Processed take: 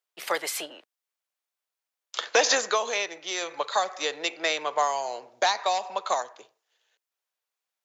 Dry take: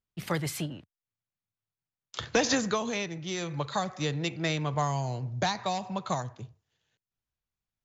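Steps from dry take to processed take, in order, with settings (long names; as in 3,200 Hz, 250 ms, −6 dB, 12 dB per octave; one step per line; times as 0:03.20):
high-pass filter 460 Hz 24 dB per octave
level +6 dB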